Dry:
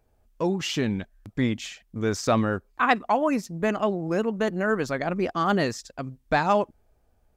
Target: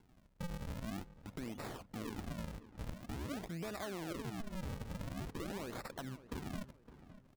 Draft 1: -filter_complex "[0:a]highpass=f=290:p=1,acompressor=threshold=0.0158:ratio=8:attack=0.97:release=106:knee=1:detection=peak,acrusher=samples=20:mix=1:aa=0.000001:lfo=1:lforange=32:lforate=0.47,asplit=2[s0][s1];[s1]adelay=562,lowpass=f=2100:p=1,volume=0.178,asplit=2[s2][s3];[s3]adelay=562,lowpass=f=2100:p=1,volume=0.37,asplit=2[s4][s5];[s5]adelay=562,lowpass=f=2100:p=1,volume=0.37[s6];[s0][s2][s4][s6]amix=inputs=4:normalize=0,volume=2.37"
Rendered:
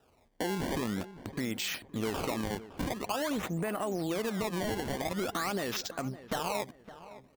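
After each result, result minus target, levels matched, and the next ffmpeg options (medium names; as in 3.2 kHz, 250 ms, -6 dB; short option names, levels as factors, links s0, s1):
compression: peak gain reduction -9.5 dB; decimation with a swept rate: distortion -11 dB
-filter_complex "[0:a]highpass=f=290:p=1,acompressor=threshold=0.00447:ratio=8:attack=0.97:release=106:knee=1:detection=peak,acrusher=samples=20:mix=1:aa=0.000001:lfo=1:lforange=32:lforate=0.47,asplit=2[s0][s1];[s1]adelay=562,lowpass=f=2100:p=1,volume=0.178,asplit=2[s2][s3];[s3]adelay=562,lowpass=f=2100:p=1,volume=0.37,asplit=2[s4][s5];[s5]adelay=562,lowpass=f=2100:p=1,volume=0.37[s6];[s0][s2][s4][s6]amix=inputs=4:normalize=0,volume=2.37"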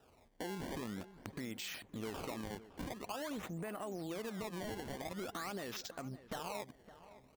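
decimation with a swept rate: distortion -11 dB
-filter_complex "[0:a]highpass=f=290:p=1,acompressor=threshold=0.00447:ratio=8:attack=0.97:release=106:knee=1:detection=peak,acrusher=samples=71:mix=1:aa=0.000001:lfo=1:lforange=114:lforate=0.47,asplit=2[s0][s1];[s1]adelay=562,lowpass=f=2100:p=1,volume=0.178,asplit=2[s2][s3];[s3]adelay=562,lowpass=f=2100:p=1,volume=0.37,asplit=2[s4][s5];[s5]adelay=562,lowpass=f=2100:p=1,volume=0.37[s6];[s0][s2][s4][s6]amix=inputs=4:normalize=0,volume=2.37"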